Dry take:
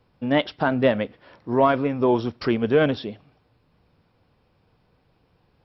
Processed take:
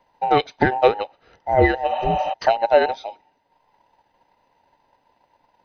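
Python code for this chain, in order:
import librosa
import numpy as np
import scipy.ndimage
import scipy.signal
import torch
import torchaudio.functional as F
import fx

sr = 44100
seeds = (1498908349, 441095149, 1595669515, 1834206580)

y = fx.band_invert(x, sr, width_hz=1000)
y = fx.transient(y, sr, attack_db=7, sustain_db=-5)
y = fx.spec_repair(y, sr, seeds[0], start_s=1.93, length_s=0.38, low_hz=500.0, high_hz=4200.0, source='before')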